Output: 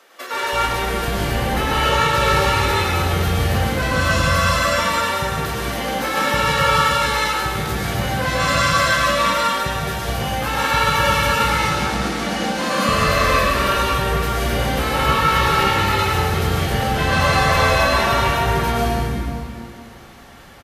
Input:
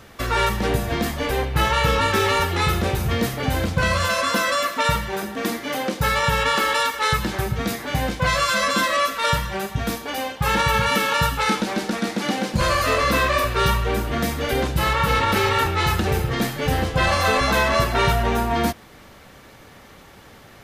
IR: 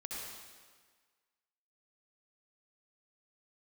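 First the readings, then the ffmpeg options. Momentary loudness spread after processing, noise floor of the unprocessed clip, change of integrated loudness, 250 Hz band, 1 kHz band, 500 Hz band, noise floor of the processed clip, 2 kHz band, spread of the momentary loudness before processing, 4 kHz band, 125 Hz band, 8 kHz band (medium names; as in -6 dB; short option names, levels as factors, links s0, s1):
7 LU, -46 dBFS, +3.0 dB, +1.0 dB, +3.5 dB, +2.0 dB, -38 dBFS, +3.0 dB, 6 LU, +3.0 dB, +3.0 dB, +3.0 dB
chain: -filter_complex "[0:a]acrossover=split=340[s0][s1];[s0]adelay=330[s2];[s2][s1]amix=inputs=2:normalize=0[s3];[1:a]atrim=start_sample=2205,asetrate=28224,aresample=44100[s4];[s3][s4]afir=irnorm=-1:irlink=0"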